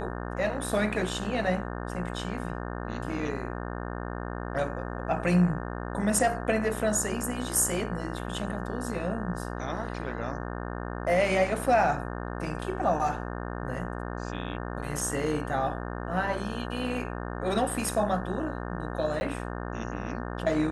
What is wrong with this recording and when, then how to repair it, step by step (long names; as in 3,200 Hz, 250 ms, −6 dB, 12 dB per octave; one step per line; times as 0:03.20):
mains buzz 60 Hz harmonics 30 −35 dBFS
0:19.20–0:19.21: drop-out 10 ms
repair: hum removal 60 Hz, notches 30
repair the gap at 0:19.20, 10 ms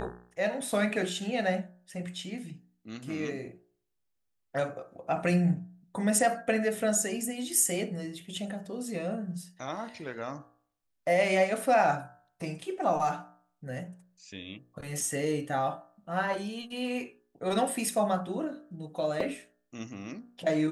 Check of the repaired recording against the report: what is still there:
none of them is left